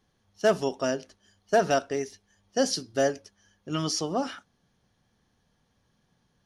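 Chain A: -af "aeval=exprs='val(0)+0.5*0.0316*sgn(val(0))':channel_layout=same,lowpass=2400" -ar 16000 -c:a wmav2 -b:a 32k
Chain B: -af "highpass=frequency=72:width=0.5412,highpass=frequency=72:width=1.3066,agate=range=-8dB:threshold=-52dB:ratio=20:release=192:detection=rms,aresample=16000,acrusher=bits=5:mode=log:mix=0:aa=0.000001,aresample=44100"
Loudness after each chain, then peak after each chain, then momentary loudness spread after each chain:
−29.0, −28.0 LKFS; −12.5, −11.5 dBFS; 14, 11 LU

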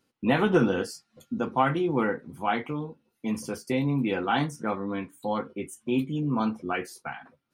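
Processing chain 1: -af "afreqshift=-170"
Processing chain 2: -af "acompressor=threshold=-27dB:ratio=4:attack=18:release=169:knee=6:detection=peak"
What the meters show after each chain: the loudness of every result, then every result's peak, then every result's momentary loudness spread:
−29.5, −32.5 LKFS; −8.5, −16.0 dBFS; 13, 9 LU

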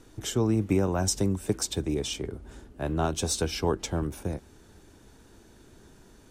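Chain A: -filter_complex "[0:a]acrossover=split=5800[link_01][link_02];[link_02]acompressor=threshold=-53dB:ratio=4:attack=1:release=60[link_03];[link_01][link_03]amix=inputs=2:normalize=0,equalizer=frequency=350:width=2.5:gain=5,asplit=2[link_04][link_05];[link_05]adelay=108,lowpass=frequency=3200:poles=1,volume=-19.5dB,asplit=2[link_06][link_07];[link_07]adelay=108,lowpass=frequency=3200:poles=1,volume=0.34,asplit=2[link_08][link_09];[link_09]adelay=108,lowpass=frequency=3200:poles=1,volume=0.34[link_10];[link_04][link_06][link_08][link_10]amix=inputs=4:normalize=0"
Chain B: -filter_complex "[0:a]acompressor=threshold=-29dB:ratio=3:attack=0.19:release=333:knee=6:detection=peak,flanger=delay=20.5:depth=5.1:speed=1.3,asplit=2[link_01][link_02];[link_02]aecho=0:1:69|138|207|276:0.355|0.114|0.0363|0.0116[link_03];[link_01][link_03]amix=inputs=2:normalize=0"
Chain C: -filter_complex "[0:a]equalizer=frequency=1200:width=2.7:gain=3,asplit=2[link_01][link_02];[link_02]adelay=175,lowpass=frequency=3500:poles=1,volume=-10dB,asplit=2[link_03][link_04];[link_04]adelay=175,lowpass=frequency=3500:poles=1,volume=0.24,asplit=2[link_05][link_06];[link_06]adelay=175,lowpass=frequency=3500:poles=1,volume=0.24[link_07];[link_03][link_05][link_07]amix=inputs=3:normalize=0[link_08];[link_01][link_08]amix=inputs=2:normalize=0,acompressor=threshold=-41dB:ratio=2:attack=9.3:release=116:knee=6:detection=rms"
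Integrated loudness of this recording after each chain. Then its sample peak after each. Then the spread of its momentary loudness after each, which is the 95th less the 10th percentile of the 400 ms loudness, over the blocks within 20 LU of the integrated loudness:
−27.5, −38.5, −38.0 LKFS; −10.0, −23.5, −21.0 dBFS; 11, 21, 18 LU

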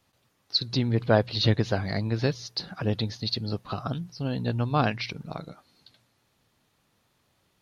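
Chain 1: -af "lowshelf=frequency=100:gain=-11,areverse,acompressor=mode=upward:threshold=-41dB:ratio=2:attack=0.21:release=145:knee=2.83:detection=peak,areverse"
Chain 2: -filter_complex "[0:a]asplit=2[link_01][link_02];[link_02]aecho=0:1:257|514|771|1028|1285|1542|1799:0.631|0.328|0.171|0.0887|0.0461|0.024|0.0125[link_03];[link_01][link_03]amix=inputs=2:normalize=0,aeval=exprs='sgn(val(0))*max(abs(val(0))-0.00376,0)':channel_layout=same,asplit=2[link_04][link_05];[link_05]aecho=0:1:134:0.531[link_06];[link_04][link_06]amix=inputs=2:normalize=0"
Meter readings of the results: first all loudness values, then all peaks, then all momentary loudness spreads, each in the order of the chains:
−29.0, −25.5 LKFS; −8.0, −7.5 dBFS; 10, 9 LU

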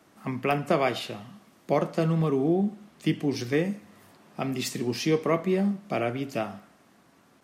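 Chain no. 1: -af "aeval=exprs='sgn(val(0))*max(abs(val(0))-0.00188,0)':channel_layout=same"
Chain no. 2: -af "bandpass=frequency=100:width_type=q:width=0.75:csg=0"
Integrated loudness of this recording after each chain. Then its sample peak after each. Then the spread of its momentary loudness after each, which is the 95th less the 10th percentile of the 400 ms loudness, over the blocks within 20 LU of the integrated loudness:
−28.0, −34.0 LKFS; −10.0, −18.5 dBFS; 10, 14 LU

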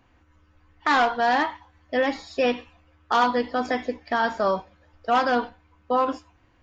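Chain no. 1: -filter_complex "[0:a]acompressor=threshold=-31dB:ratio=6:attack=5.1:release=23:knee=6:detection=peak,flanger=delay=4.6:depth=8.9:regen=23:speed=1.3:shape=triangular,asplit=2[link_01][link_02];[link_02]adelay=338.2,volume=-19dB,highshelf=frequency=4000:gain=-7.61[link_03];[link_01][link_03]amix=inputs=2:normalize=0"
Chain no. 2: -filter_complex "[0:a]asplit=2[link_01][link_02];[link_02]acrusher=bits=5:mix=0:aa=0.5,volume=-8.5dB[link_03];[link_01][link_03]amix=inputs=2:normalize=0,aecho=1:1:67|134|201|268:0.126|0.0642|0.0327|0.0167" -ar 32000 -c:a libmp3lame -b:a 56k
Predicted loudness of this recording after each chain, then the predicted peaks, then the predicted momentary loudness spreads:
−37.5, −22.0 LKFS; −23.0, −8.5 dBFS; 13, 9 LU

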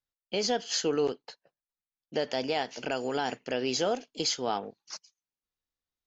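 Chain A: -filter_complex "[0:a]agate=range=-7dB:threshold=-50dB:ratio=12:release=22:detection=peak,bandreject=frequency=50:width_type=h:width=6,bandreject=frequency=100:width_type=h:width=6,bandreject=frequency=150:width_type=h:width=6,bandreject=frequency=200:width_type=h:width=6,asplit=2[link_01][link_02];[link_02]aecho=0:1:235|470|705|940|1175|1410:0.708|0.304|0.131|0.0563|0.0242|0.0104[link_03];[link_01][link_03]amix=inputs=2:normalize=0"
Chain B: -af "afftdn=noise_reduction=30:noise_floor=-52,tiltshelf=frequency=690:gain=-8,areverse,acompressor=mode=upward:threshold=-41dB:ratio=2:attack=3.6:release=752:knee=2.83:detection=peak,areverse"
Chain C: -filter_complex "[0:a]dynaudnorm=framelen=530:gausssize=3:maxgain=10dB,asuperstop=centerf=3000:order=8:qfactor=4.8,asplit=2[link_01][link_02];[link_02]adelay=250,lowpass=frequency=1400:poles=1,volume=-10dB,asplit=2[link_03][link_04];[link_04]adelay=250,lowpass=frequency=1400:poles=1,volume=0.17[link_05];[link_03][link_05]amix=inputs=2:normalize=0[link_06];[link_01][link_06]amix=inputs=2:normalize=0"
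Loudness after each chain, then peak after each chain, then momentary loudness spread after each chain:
−29.5, −27.5, −22.0 LKFS; −13.5, −9.5, −6.5 dBFS; 15, 14, 13 LU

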